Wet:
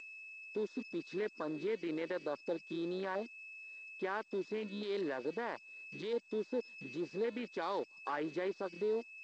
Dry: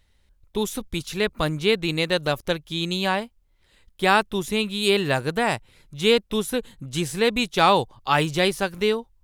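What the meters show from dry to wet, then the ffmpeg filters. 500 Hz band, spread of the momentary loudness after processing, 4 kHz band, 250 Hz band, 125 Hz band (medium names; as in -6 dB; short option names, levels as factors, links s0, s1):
-13.5 dB, 8 LU, -26.5 dB, -14.5 dB, -23.5 dB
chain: -filter_complex "[0:a]afwtdn=0.0501,bandreject=f=1300:w=16,aeval=exprs='val(0)+0.0112*sin(2*PI*2600*n/s)':c=same,equalizer=f=2400:w=0.54:g=-2.5,acompressor=threshold=0.0251:ratio=8,alimiter=level_in=2.37:limit=0.0631:level=0:latency=1:release=13,volume=0.422,acrossover=split=2600[s0][s1];[s1]acompressor=threshold=0.00178:ratio=4:attack=1:release=60[s2];[s0][s2]amix=inputs=2:normalize=0,aeval=exprs='0.0282*(cos(1*acos(clip(val(0)/0.0282,-1,1)))-cos(1*PI/2))+0.000355*(cos(4*acos(clip(val(0)/0.0282,-1,1)))-cos(4*PI/2))':c=same,aeval=exprs='sgn(val(0))*max(abs(val(0))-0.00106,0)':c=same,highpass=f=270:w=0.5412,highpass=f=270:w=1.3066,equalizer=f=750:t=q:w=4:g=-6,equalizer=f=2700:t=q:w=4:g=-10,equalizer=f=4700:t=q:w=4:g=6,lowpass=f=5300:w=0.5412,lowpass=f=5300:w=1.3066,volume=2.11" -ar 16000 -c:a g722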